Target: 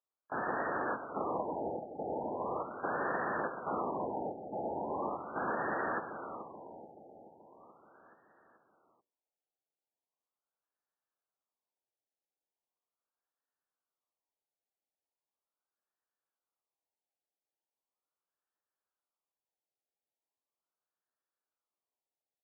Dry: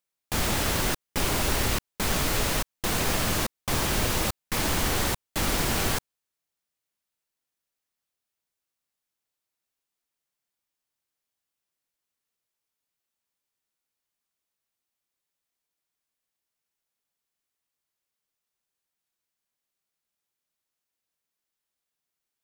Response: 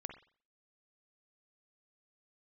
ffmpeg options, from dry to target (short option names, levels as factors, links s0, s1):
-filter_complex "[0:a]highpass=400,lowpass=4200,bandreject=f=60:t=h:w=6,bandreject=f=120:t=h:w=6,bandreject=f=180:t=h:w=6,bandreject=f=240:t=h:w=6,bandreject=f=300:t=h:w=6,bandreject=f=360:t=h:w=6,bandreject=f=420:t=h:w=6,bandreject=f=480:t=h:w=6,bandreject=f=540:t=h:w=6,bandreject=f=600:t=h:w=6,asplit=3[s0][s1][s2];[s1]asetrate=35002,aresample=44100,atempo=1.25992,volume=0.891[s3];[s2]asetrate=58866,aresample=44100,atempo=0.749154,volume=0.158[s4];[s0][s3][s4]amix=inputs=3:normalize=0,asplit=2[s5][s6];[s6]aecho=0:1:430|860|1290|1720|2150|2580|3010:0.376|0.222|0.131|0.0772|0.0455|0.0269|0.0159[s7];[s5][s7]amix=inputs=2:normalize=0,afftfilt=real='re*lt(b*sr/1024,860*pow(1900/860,0.5+0.5*sin(2*PI*0.39*pts/sr)))':imag='im*lt(b*sr/1024,860*pow(1900/860,0.5+0.5*sin(2*PI*0.39*pts/sr)))':win_size=1024:overlap=0.75,volume=0.562"